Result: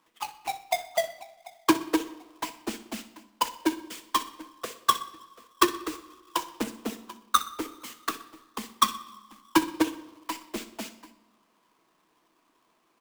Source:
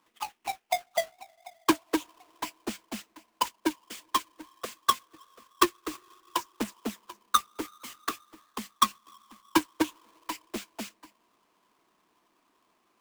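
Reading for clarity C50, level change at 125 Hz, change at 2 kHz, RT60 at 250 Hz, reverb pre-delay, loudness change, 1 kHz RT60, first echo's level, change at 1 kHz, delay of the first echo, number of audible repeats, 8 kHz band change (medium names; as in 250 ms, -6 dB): 13.0 dB, +1.5 dB, +1.5 dB, 1.3 s, 6 ms, +1.5 dB, 1.0 s, -16.5 dB, +1.5 dB, 62 ms, 2, +1.5 dB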